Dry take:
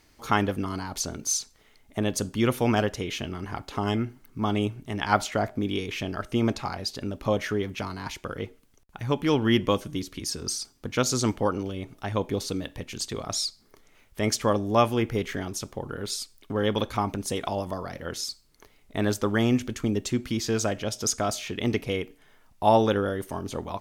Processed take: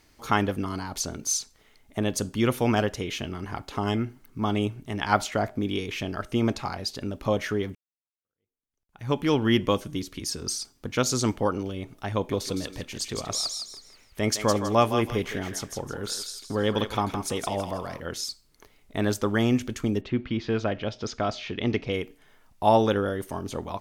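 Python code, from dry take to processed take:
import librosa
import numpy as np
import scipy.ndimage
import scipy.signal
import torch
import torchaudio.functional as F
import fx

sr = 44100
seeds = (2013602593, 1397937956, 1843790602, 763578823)

y = fx.echo_thinned(x, sr, ms=162, feedback_pct=32, hz=790.0, wet_db=-5.5, at=(12.15, 18.0))
y = fx.lowpass(y, sr, hz=fx.line((20.0, 3000.0), (21.92, 5500.0)), slope=24, at=(20.0, 21.92), fade=0.02)
y = fx.edit(y, sr, fx.fade_in_span(start_s=7.75, length_s=1.35, curve='exp'), tone=tone)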